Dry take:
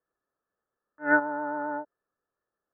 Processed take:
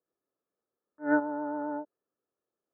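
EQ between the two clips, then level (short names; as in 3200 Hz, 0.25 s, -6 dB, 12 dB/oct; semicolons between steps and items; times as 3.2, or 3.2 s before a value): band-pass 350 Hz, Q 0.51; air absorption 390 m; bell 330 Hz +3 dB; 0.0 dB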